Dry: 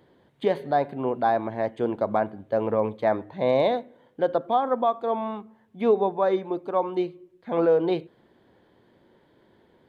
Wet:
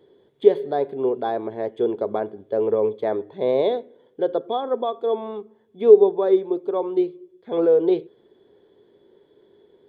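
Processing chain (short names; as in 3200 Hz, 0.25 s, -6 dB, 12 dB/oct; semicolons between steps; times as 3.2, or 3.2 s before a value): small resonant body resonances 410/3400 Hz, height 18 dB, ringing for 40 ms; gain -6 dB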